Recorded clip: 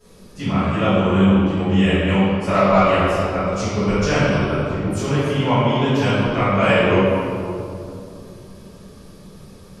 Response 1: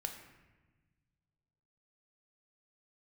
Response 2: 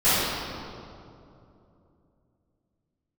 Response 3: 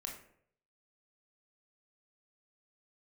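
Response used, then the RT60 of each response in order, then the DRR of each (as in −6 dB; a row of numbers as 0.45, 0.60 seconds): 2; 1.2, 2.8, 0.65 seconds; 4.0, −17.0, −0.5 decibels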